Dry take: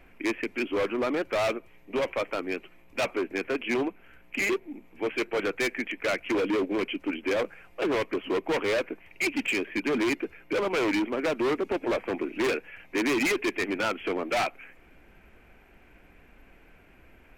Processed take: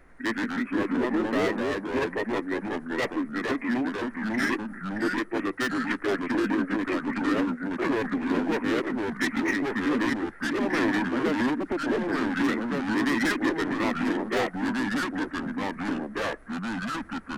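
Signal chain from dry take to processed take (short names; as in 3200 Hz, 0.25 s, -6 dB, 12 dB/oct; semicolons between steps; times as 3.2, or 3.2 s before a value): echoes that change speed 90 ms, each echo -2 st, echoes 2; formant shift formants -4 st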